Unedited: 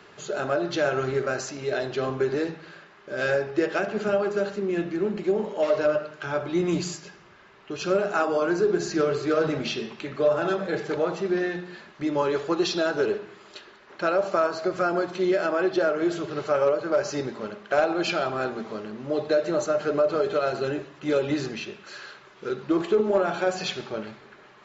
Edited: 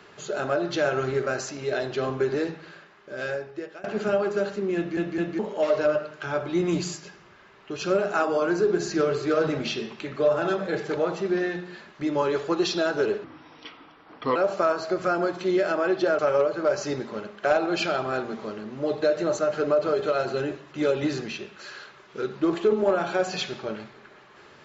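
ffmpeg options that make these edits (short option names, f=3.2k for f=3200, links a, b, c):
-filter_complex "[0:a]asplit=8[a][b][c][d][e][f][g][h];[a]atrim=end=3.84,asetpts=PTS-STARTPTS,afade=t=out:st=2.65:d=1.19:silence=0.0891251[i];[b]atrim=start=3.84:end=4.972,asetpts=PTS-STARTPTS,afade=t=in:d=0.004:c=hsin:silence=0.0891251[j];[c]atrim=start=4.758:end=4.972[k];[d]atrim=start=4.758:end=4.972[l];[e]atrim=start=5.388:end=13.244[m];[f]atrim=start=13.24:end=14.1,asetpts=PTS-STARTPTS,asetrate=33957,aresample=44100[n];[g]atrim=start=14.096:end=15.932[o];[h]atrim=start=16.458[p];[i][j]concat=n=2:v=0:a=1[q];[q][k]acrossfade=d=0.004:c1=hsin:c2=hsin[r];[r][l]acrossfade=d=0.004:c1=hsin:c2=hsin[s];[s][m]acrossfade=d=0.004:c1=hsin:c2=hsin[t];[t][n]acrossfade=d=0.004:c1=hsin:c2=hsin[u];[u][o]acrossfade=d=0.004:c1=hsin:c2=hsin[v];[v][p]acrossfade=d=0.004:c1=hsin:c2=hsin"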